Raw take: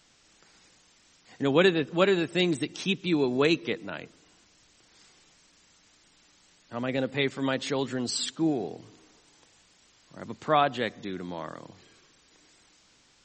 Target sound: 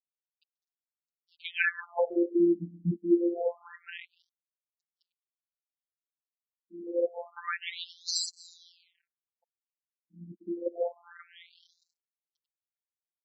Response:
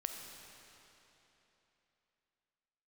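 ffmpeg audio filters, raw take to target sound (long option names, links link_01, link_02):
-filter_complex "[0:a]asplit=2[link_01][link_02];[link_02]adelay=244.9,volume=-19dB,highshelf=frequency=4000:gain=-5.51[link_03];[link_01][link_03]amix=inputs=2:normalize=0,aeval=exprs='sgn(val(0))*max(abs(val(0))-0.00355,0)':channel_layout=same,afftfilt=real='hypot(re,im)*cos(PI*b)':imag='0':win_size=1024:overlap=0.75,afftfilt=real='re*between(b*sr/1024,230*pow(5700/230,0.5+0.5*sin(2*PI*0.27*pts/sr))/1.41,230*pow(5700/230,0.5+0.5*sin(2*PI*0.27*pts/sr))*1.41)':imag='im*between(b*sr/1024,230*pow(5700/230,0.5+0.5*sin(2*PI*0.27*pts/sr))/1.41,230*pow(5700/230,0.5+0.5*sin(2*PI*0.27*pts/sr))*1.41)':win_size=1024:overlap=0.75,volume=6dB"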